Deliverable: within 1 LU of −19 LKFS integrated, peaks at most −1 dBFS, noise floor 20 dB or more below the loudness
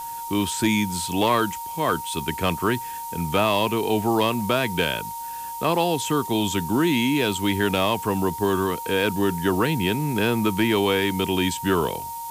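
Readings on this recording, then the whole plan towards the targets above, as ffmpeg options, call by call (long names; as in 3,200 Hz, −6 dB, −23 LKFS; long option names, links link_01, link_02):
interfering tone 930 Hz; level of the tone −31 dBFS; background noise floor −33 dBFS; target noise floor −43 dBFS; integrated loudness −23.0 LKFS; sample peak −9.5 dBFS; target loudness −19.0 LKFS
→ -af "bandreject=frequency=930:width=30"
-af "afftdn=noise_reduction=10:noise_floor=-33"
-af "volume=4dB"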